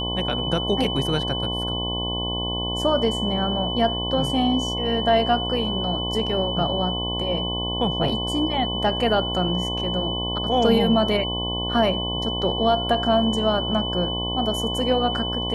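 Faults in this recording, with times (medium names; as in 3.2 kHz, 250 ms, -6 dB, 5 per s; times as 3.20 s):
buzz 60 Hz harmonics 18 -29 dBFS
whine 3 kHz -27 dBFS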